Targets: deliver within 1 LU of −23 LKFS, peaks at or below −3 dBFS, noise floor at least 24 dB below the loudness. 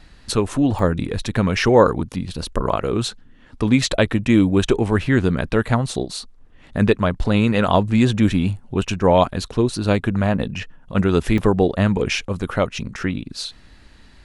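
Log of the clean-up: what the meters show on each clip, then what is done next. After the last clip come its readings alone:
number of dropouts 2; longest dropout 2.3 ms; integrated loudness −19.5 LKFS; sample peak −1.0 dBFS; target loudness −23.0 LKFS
→ repair the gap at 0:00.79/0:11.38, 2.3 ms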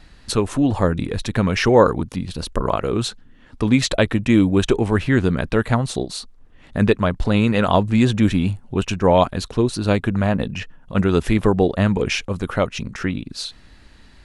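number of dropouts 0; integrated loudness −19.5 LKFS; sample peak −1.0 dBFS; target loudness −23.0 LKFS
→ level −3.5 dB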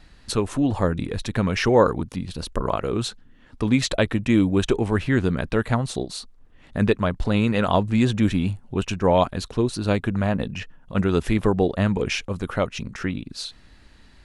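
integrated loudness −23.0 LKFS; sample peak −4.5 dBFS; background noise floor −51 dBFS

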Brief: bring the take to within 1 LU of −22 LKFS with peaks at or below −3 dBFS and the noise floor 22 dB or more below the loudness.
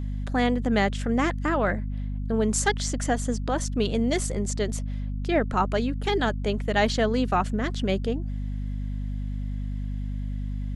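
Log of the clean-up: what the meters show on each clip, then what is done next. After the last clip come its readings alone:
mains hum 50 Hz; hum harmonics up to 250 Hz; level of the hum −27 dBFS; integrated loudness −27.0 LKFS; sample peak −9.0 dBFS; target loudness −22.0 LKFS
→ hum removal 50 Hz, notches 5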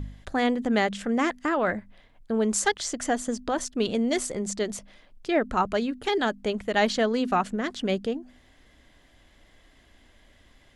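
mains hum none found; integrated loudness −26.5 LKFS; sample peak −9.0 dBFS; target loudness −22.0 LKFS
→ level +4.5 dB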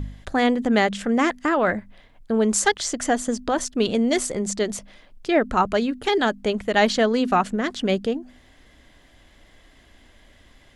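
integrated loudness −22.0 LKFS; sample peak −4.5 dBFS; background noise floor −54 dBFS

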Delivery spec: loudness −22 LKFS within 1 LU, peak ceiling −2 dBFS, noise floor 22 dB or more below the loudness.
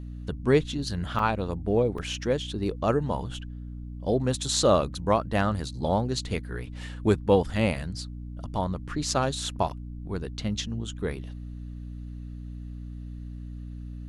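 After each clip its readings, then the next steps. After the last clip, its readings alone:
number of dropouts 2; longest dropout 3.8 ms; mains hum 60 Hz; hum harmonics up to 300 Hz; level of the hum −35 dBFS; integrated loudness −27.5 LKFS; sample peak −9.0 dBFS; target loudness −22.0 LKFS
→ repair the gap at 0:01.19/0:01.98, 3.8 ms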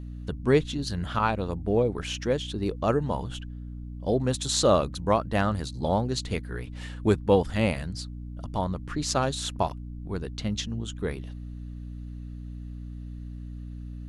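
number of dropouts 0; mains hum 60 Hz; hum harmonics up to 300 Hz; level of the hum −35 dBFS
→ hum removal 60 Hz, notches 5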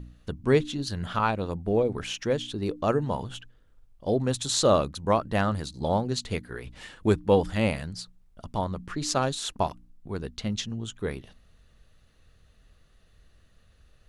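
mains hum none found; integrated loudness −28.0 LKFS; sample peak −9.0 dBFS; target loudness −22.0 LKFS
→ level +6 dB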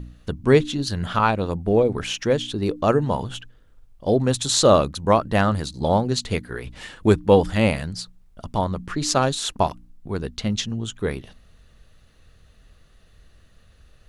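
integrated loudness −22.0 LKFS; sample peak −3.0 dBFS; background noise floor −54 dBFS

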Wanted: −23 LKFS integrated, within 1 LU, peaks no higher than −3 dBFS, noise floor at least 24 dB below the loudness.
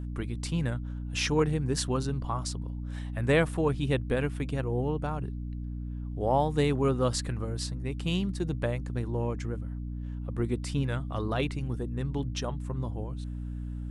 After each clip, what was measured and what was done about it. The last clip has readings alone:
mains hum 60 Hz; hum harmonics up to 300 Hz; level of the hum −33 dBFS; integrated loudness −31.0 LKFS; sample peak −12.0 dBFS; target loudness −23.0 LKFS
→ hum removal 60 Hz, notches 5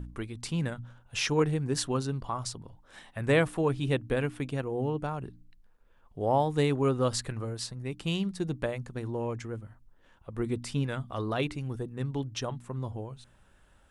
mains hum none found; integrated loudness −31.5 LKFS; sample peak −13.0 dBFS; target loudness −23.0 LKFS
→ level +8.5 dB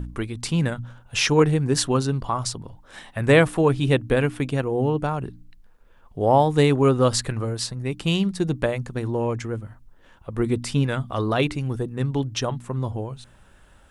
integrated loudness −23.0 LKFS; sample peak −4.5 dBFS; background noise floor −53 dBFS

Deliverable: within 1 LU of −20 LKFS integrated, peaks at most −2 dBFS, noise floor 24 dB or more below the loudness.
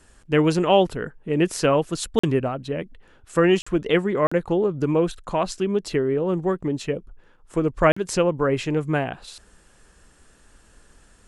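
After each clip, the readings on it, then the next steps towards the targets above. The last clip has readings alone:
number of dropouts 4; longest dropout 45 ms; integrated loudness −22.5 LKFS; sample peak −4.5 dBFS; target loudness −20.0 LKFS
→ repair the gap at 0:02.19/0:03.62/0:04.27/0:07.92, 45 ms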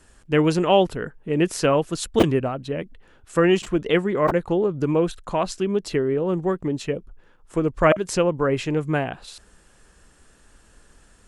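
number of dropouts 0; integrated loudness −22.5 LKFS; sample peak −3.0 dBFS; target loudness −20.0 LKFS
→ level +2.5 dB
brickwall limiter −2 dBFS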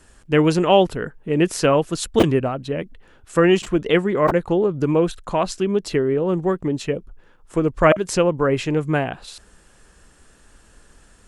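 integrated loudness −20.0 LKFS; sample peak −2.0 dBFS; background noise floor −53 dBFS

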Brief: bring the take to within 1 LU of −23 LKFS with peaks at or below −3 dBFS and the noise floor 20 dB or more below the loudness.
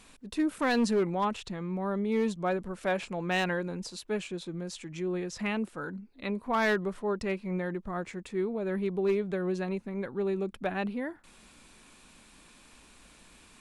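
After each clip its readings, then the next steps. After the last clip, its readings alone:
share of clipped samples 0.4%; peaks flattened at −21.0 dBFS; integrated loudness −32.0 LKFS; sample peak −21.0 dBFS; target loudness −23.0 LKFS
→ clipped peaks rebuilt −21 dBFS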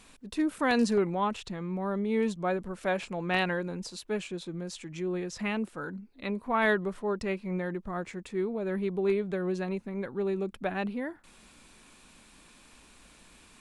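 share of clipped samples 0.0%; integrated loudness −31.5 LKFS; sample peak −12.0 dBFS; target loudness −23.0 LKFS
→ level +8.5 dB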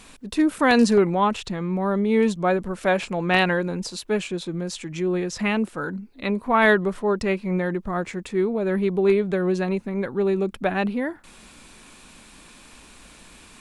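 integrated loudness −23.0 LKFS; sample peak −3.5 dBFS; background noise floor −49 dBFS

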